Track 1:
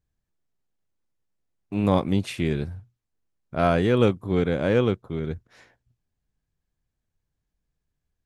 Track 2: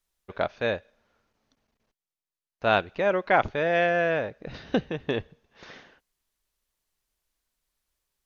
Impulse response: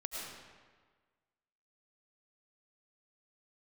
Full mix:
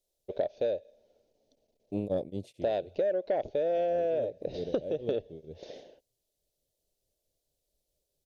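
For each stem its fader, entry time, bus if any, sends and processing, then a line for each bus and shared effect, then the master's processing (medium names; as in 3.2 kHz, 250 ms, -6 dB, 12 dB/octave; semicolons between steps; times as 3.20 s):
-5.5 dB, 0.20 s, no send, tremolo of two beating tones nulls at 4.5 Hz; auto duck -12 dB, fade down 0.45 s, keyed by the second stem
-1.5 dB, 0.00 s, no send, tone controls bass -4 dB, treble +1 dB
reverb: none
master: FFT filter 220 Hz 0 dB, 590 Hz +12 dB, 1.2 kHz -23 dB, 3.7 kHz -1 dB; saturation -9.5 dBFS, distortion -22 dB; compression 6:1, threshold -27 dBFS, peak gain reduction 12.5 dB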